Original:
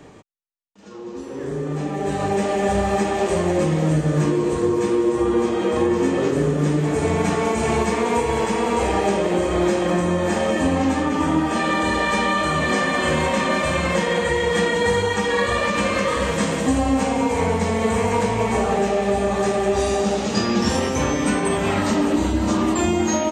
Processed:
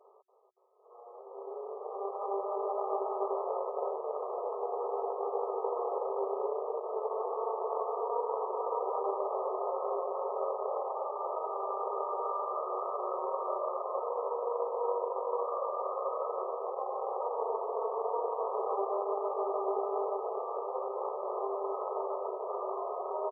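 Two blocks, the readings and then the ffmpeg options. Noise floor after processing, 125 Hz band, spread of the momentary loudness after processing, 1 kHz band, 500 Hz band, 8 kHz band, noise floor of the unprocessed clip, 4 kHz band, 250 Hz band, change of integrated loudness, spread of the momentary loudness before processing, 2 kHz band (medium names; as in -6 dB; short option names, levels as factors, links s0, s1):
-50 dBFS, under -40 dB, 3 LU, -10.0 dB, -11.5 dB, under -40 dB, -33 dBFS, under -40 dB, under -25 dB, -14.5 dB, 2 LU, under -40 dB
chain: -filter_complex "[0:a]asplit=9[s0][s1][s2][s3][s4][s5][s6][s7][s8];[s1]adelay=283,afreqshift=48,volume=0.447[s9];[s2]adelay=566,afreqshift=96,volume=0.275[s10];[s3]adelay=849,afreqshift=144,volume=0.172[s11];[s4]adelay=1132,afreqshift=192,volume=0.106[s12];[s5]adelay=1415,afreqshift=240,volume=0.0661[s13];[s6]adelay=1698,afreqshift=288,volume=0.0407[s14];[s7]adelay=1981,afreqshift=336,volume=0.0254[s15];[s8]adelay=2264,afreqshift=384,volume=0.0157[s16];[s0][s9][s10][s11][s12][s13][s14][s15][s16]amix=inputs=9:normalize=0,aeval=exprs='max(val(0),0)':c=same,afftfilt=real='re*between(b*sr/4096,370,1300)':imag='im*between(b*sr/4096,370,1300)':win_size=4096:overlap=0.75,volume=0.422"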